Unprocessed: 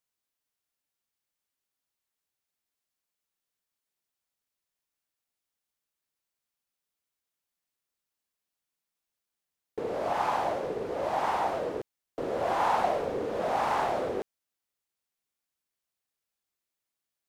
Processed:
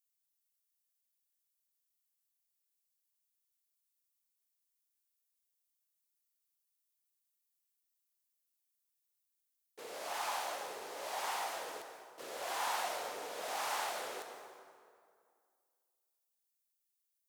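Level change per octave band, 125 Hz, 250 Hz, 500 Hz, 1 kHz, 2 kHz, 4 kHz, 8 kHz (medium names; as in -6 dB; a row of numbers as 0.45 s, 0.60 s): under -25 dB, -19.5 dB, -14.5 dB, -10.5 dB, -4.5 dB, +1.5 dB, +7.0 dB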